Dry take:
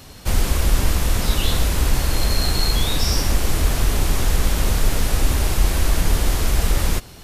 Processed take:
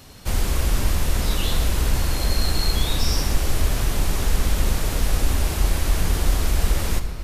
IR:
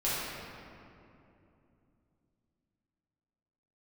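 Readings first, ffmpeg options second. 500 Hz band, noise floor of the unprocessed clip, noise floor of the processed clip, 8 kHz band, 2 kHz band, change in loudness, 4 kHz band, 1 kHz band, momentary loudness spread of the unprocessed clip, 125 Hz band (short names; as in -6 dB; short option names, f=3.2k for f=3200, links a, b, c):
-2.5 dB, -41 dBFS, -28 dBFS, -3.0 dB, -3.0 dB, -2.5 dB, -3.0 dB, -3.0 dB, 2 LU, -2.0 dB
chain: -filter_complex "[0:a]asplit=2[a][b];[1:a]atrim=start_sample=2205,adelay=54[c];[b][c]afir=irnorm=-1:irlink=0,volume=-17.5dB[d];[a][d]amix=inputs=2:normalize=0,volume=-3.5dB"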